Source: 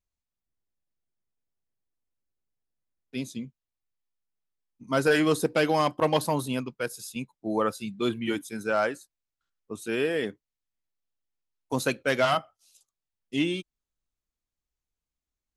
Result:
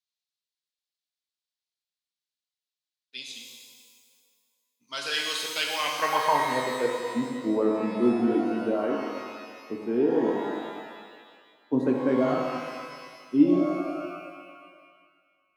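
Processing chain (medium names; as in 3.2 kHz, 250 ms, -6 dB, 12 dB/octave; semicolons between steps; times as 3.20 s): band-pass sweep 4 kHz -> 290 Hz, 5.55–6.98 s; pitch-shifted reverb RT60 1.8 s, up +12 st, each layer -8 dB, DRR 0 dB; trim +7.5 dB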